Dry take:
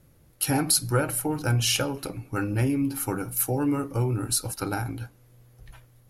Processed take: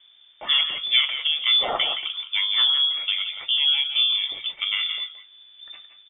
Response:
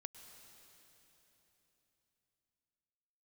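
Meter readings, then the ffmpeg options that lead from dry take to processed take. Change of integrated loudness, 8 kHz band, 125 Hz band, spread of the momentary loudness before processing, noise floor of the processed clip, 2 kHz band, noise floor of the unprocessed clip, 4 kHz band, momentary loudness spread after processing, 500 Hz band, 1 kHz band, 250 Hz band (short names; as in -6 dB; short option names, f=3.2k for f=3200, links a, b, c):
+5.5 dB, under -40 dB, under -30 dB, 10 LU, -54 dBFS, +6.5 dB, -58 dBFS, +16.0 dB, 9 LU, -8.5 dB, -1.5 dB, under -25 dB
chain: -filter_complex "[0:a]asplit=2[a][b];[b]adelay=170,highpass=300,lowpass=3.4k,asoftclip=type=hard:threshold=-16.5dB,volume=-8dB[c];[a][c]amix=inputs=2:normalize=0[d];[1:a]atrim=start_sample=2205,atrim=end_sample=4410,asetrate=30870,aresample=44100[e];[d][e]afir=irnorm=-1:irlink=0,lowpass=f=3.1k:t=q:w=0.5098,lowpass=f=3.1k:t=q:w=0.6013,lowpass=f=3.1k:t=q:w=0.9,lowpass=f=3.1k:t=q:w=2.563,afreqshift=-3600,volume=8dB"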